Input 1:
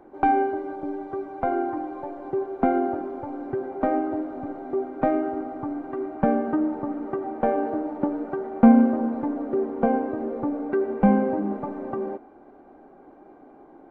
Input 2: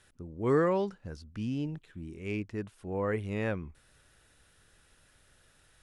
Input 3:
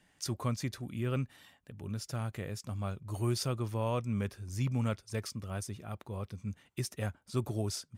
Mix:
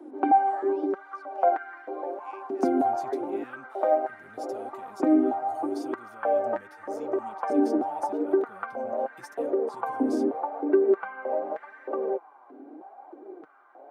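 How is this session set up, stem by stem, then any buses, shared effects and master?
+1.5 dB, 0.00 s, no send, compression 6:1, threshold -22 dBFS, peak gain reduction 12.5 dB; step-sequenced high-pass 3.2 Hz 280–1700 Hz
-9.0 dB, 0.00 s, muted 1.44–2.01 s, no send, steep high-pass 770 Hz
-3.0 dB, 2.40 s, no send, peak limiter -31.5 dBFS, peak gain reduction 11 dB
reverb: none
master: Chebyshev high-pass 270 Hz, order 2; flange 0.84 Hz, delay 3 ms, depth 5.7 ms, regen +28%

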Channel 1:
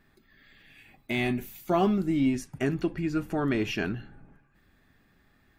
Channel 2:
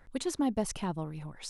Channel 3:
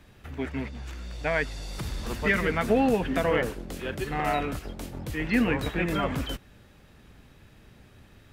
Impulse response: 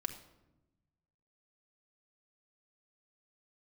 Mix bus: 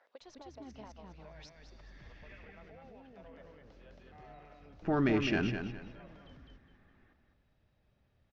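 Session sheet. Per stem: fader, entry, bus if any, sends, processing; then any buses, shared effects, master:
-1.5 dB, 1.55 s, muted 2.53–4.82 s, no bus, no send, echo send -7.5 dB, local Wiener filter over 9 samples
+2.0 dB, 0.00 s, bus A, no send, echo send -23 dB, none
-16.0 dB, 0.00 s, bus A, no send, echo send -11 dB, bass shelf 240 Hz +9 dB; peak limiter -22.5 dBFS, peak gain reduction 14 dB
bus A: 0.0 dB, ladder high-pass 500 Hz, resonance 50%; compression 10:1, threshold -50 dBFS, peak gain reduction 20 dB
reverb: none
echo: feedback delay 206 ms, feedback 29%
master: steep low-pass 6 kHz 48 dB/octave

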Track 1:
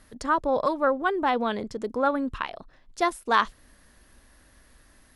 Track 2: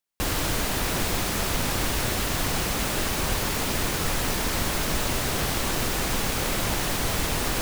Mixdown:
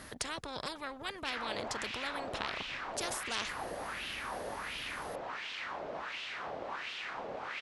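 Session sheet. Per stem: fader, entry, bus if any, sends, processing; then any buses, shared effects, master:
-11.0 dB, 0.00 s, no send, high-pass 55 Hz; treble shelf 9.3 kHz -5.5 dB; spectrum-flattening compressor 4:1
-3.5 dB, 1.05 s, no send, wah-wah 1.4 Hz 560–3000 Hz, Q 2.7; low-pass 4.9 kHz 12 dB/octave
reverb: none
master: none

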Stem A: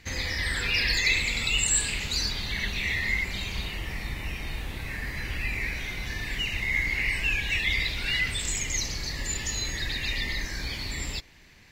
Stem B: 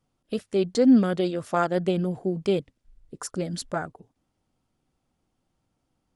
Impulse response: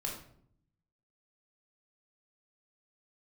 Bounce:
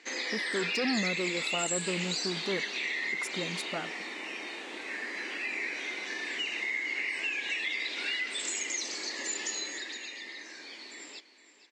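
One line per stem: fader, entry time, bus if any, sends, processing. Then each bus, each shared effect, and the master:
9.53 s -1 dB -> 10.12 s -10 dB, 0.00 s, no send, echo send -14 dB, elliptic band-pass 320–7900 Hz, stop band 50 dB; bass shelf 480 Hz +5 dB; compression, threshold -29 dBFS, peak gain reduction 9.5 dB
-5.0 dB, 0.00 s, no send, no echo send, saturation -23.5 dBFS, distortion -7 dB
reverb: none
echo: delay 464 ms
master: brick-wall FIR high-pass 160 Hz

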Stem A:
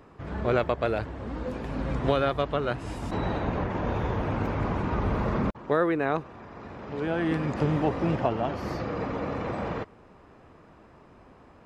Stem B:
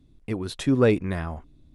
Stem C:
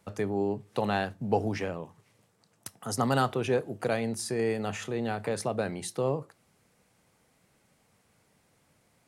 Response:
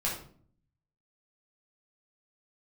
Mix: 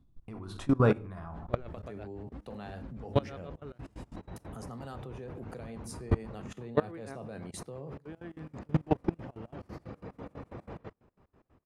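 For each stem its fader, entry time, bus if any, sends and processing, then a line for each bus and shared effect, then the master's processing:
-0.5 dB, 1.05 s, no send, logarithmic tremolo 6.1 Hz, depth 30 dB
-10.0 dB, 0.00 s, send -8 dB, high-order bell 1 kHz +10 dB 1.3 oct
-7.5 dB, 1.70 s, send -15 dB, none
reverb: on, RT60 0.50 s, pre-delay 8 ms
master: bass shelf 370 Hz +7.5 dB; level held to a coarse grid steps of 21 dB

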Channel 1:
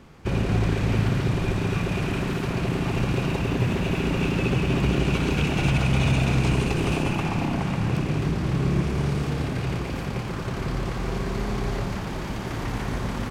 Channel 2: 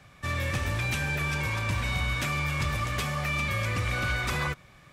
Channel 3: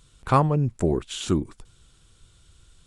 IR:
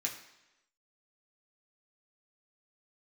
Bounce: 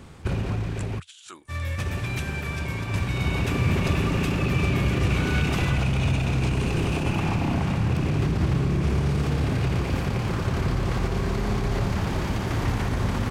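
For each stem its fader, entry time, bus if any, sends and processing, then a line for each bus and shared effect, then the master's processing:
+3.0 dB, 0.00 s, muted 1.00–1.78 s, no send, peak limiter -20.5 dBFS, peak gain reduction 11 dB; auto duck -9 dB, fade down 1.10 s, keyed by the third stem
0.0 dB, 1.25 s, no send, upward expansion 2.5:1, over -38 dBFS
-6.0 dB, 0.00 s, no send, high-pass 1.3 kHz 12 dB/octave; compressor with a negative ratio -39 dBFS, ratio -0.5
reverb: none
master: peaking EQ 85 Hz +8.5 dB 0.64 oct

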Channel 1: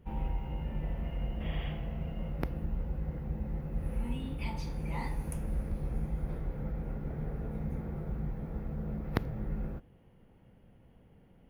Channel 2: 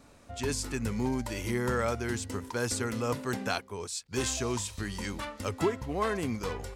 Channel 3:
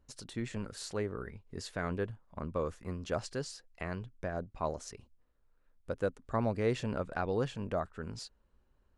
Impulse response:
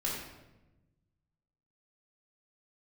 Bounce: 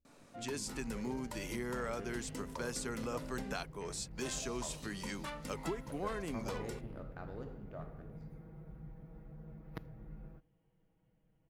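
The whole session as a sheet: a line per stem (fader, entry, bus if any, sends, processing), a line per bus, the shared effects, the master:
-17.0 dB, 0.60 s, no send, comb 6.3 ms, depth 92%
-4.0 dB, 0.05 s, no send, high-pass 140 Hz 24 dB/octave; compression 2.5:1, threshold -34 dBFS, peak gain reduction 8 dB
-18.0 dB, 0.00 s, send -5 dB, local Wiener filter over 41 samples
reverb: on, RT60 1.0 s, pre-delay 3 ms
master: none

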